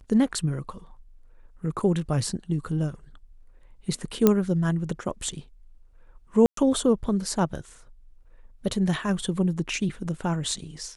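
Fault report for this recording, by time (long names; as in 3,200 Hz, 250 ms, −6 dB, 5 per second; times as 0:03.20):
0:04.27: click −5 dBFS
0:06.46–0:06.57: drop-out 113 ms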